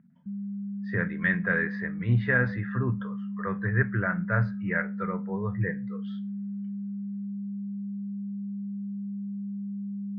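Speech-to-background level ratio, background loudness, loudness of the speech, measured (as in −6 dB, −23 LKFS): 6.5 dB, −35.5 LKFS, −29.0 LKFS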